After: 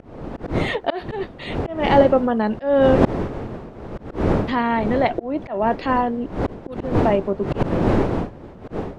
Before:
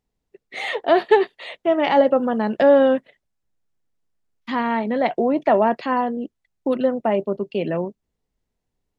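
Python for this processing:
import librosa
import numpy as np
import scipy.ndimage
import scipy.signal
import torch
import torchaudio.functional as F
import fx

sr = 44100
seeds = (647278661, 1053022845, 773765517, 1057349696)

y = fx.dmg_wind(x, sr, seeds[0], corner_hz=420.0, level_db=-21.0)
y = fx.auto_swell(y, sr, attack_ms=259.0)
y = F.gain(torch.from_numpy(y), 1.5).numpy()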